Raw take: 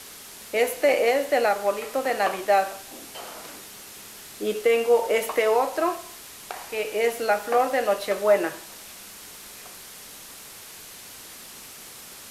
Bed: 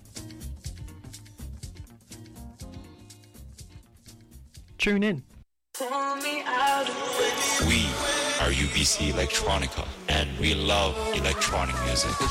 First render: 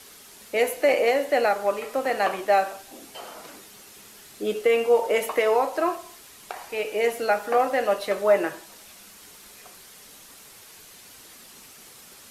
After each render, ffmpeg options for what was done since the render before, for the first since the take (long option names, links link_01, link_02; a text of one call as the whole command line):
ffmpeg -i in.wav -af "afftdn=noise_reduction=6:noise_floor=-43" out.wav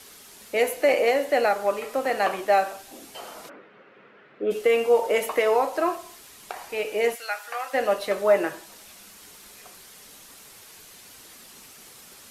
ffmpeg -i in.wav -filter_complex "[0:a]asplit=3[link_01][link_02][link_03];[link_01]afade=type=out:start_time=3.48:duration=0.02[link_04];[link_02]highpass=frequency=140:width=0.5412,highpass=frequency=140:width=1.3066,equalizer=frequency=210:width_type=q:width=4:gain=-3,equalizer=frequency=520:width_type=q:width=4:gain=8,equalizer=frequency=830:width_type=q:width=4:gain=-4,equalizer=frequency=1400:width_type=q:width=4:gain=4,lowpass=frequency=2300:width=0.5412,lowpass=frequency=2300:width=1.3066,afade=type=in:start_time=3.48:duration=0.02,afade=type=out:start_time=4.5:duration=0.02[link_05];[link_03]afade=type=in:start_time=4.5:duration=0.02[link_06];[link_04][link_05][link_06]amix=inputs=3:normalize=0,asplit=3[link_07][link_08][link_09];[link_07]afade=type=out:start_time=7.14:duration=0.02[link_10];[link_08]highpass=1400,afade=type=in:start_time=7.14:duration=0.02,afade=type=out:start_time=7.73:duration=0.02[link_11];[link_09]afade=type=in:start_time=7.73:duration=0.02[link_12];[link_10][link_11][link_12]amix=inputs=3:normalize=0" out.wav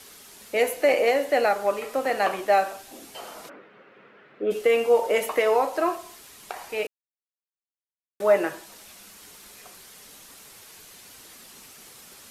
ffmpeg -i in.wav -filter_complex "[0:a]asplit=3[link_01][link_02][link_03];[link_01]atrim=end=6.87,asetpts=PTS-STARTPTS,afade=type=out:start_time=6.866:duration=0.004:curve=hsin[link_04];[link_02]atrim=start=6.87:end=8.2,asetpts=PTS-STARTPTS,volume=0[link_05];[link_03]atrim=start=8.2,asetpts=PTS-STARTPTS,afade=type=in:duration=0.004:curve=hsin[link_06];[link_04][link_05][link_06]concat=n=3:v=0:a=1" out.wav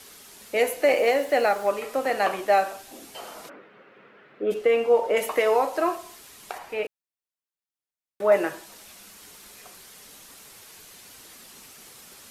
ffmpeg -i in.wav -filter_complex "[0:a]asettb=1/sr,asplit=3[link_01][link_02][link_03];[link_01]atrim=end=0.854[link_04];[link_02]atrim=start=0.85:end=1.7,asetpts=PTS-STARTPTS,afade=type=in:duration=0.004:curve=qsin,afade=type=out:start_time=0.846:duration=0.004:curve=qsin,acrusher=bits=7:mix=0:aa=0.5[link_05];[link_03]atrim=start=1.696[link_06];[link_04][link_05]acrossfade=duration=0.004:curve1=hsin:curve2=qsin[link_07];[link_07][link_06]acrossfade=duration=0.004:curve1=qsin:curve2=hsin,asettb=1/sr,asplit=3[link_08][link_09][link_10];[link_08]atrim=end=4.544[link_11];[link_09]atrim=start=4.54:end=5.17,asetpts=PTS-STARTPTS,afade=type=in:duration=0.004:curve=qsin,afade=type=out:start_time=0.626:duration=0.004:curve=qsin,lowpass=frequency=2600:poles=1[link_12];[link_10]atrim=start=5.166[link_13];[link_11][link_12]acrossfade=duration=0.004:curve1=hsin:curve2=qsin[link_14];[link_14][link_13]acrossfade=duration=0.004:curve1=qsin:curve2=hsin,asettb=1/sr,asplit=3[link_15][link_16][link_17];[link_15]atrim=end=6.584[link_18];[link_16]atrim=start=6.58:end=8.32,asetpts=PTS-STARTPTS,afade=type=in:duration=0.004:curve=qsin,afade=type=out:start_time=1.736:duration=0.004:curve=qsin,acrossover=split=3200[link_19][link_20];[link_20]acompressor=threshold=-53dB:ratio=4:attack=1:release=60[link_21];[link_19][link_21]amix=inputs=2:normalize=0[link_22];[link_17]atrim=start=8.316[link_23];[link_18][link_22]acrossfade=duration=0.004:curve1=hsin:curve2=qsin[link_24];[link_24][link_23]acrossfade=duration=0.004:curve1=qsin:curve2=hsin" out.wav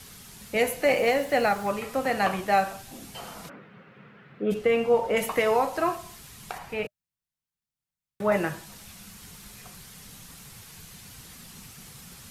ffmpeg -i in.wav -af "lowshelf=frequency=230:width_type=q:width=1.5:gain=12.5,bandreject=frequency=610:width=18" out.wav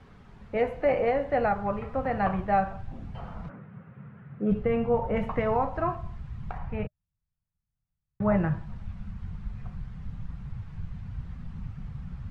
ffmpeg -i in.wav -af "lowpass=1300,asubboost=boost=11.5:cutoff=110" out.wav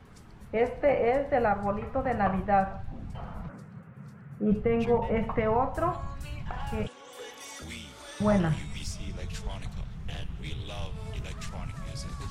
ffmpeg -i in.wav -i bed.wav -filter_complex "[1:a]volume=-18dB[link_01];[0:a][link_01]amix=inputs=2:normalize=0" out.wav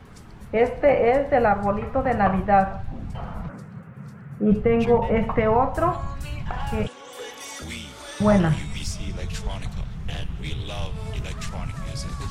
ffmpeg -i in.wav -af "volume=6.5dB" out.wav